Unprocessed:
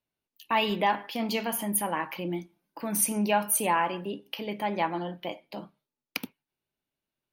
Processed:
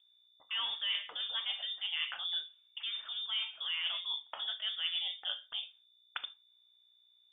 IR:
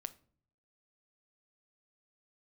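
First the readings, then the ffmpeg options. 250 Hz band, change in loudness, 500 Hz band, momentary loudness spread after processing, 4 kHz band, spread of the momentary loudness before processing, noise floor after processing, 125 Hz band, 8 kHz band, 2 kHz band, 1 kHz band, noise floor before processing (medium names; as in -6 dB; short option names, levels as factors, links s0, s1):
under -40 dB, -6.5 dB, -29.5 dB, 10 LU, +6.5 dB, 14 LU, -68 dBFS, under -40 dB, under -40 dB, -7.5 dB, -22.0 dB, under -85 dBFS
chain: -filter_complex "[0:a]highshelf=f=2400:g=-10,acrossover=split=2700[s0][s1];[s1]acompressor=threshold=0.00631:ratio=4:attack=1:release=60[s2];[s0][s2]amix=inputs=2:normalize=0,lowshelf=f=200:g=-5,areverse,acompressor=threshold=0.0178:ratio=10,areverse,aeval=exprs='val(0)+0.00141*(sin(2*PI*60*n/s)+sin(2*PI*2*60*n/s)/2+sin(2*PI*3*60*n/s)/3+sin(2*PI*4*60*n/s)/4+sin(2*PI*5*60*n/s)/5)':c=same,acrossover=split=200[s3][s4];[s3]acrusher=bits=3:mix=0:aa=0.000001[s5];[s5][s4]amix=inputs=2:normalize=0[s6];[1:a]atrim=start_sample=2205,atrim=end_sample=3969[s7];[s6][s7]afir=irnorm=-1:irlink=0,lowpass=f=3200:t=q:w=0.5098,lowpass=f=3200:t=q:w=0.6013,lowpass=f=3200:t=q:w=0.9,lowpass=f=3200:t=q:w=2.563,afreqshift=-3800,volume=2.11"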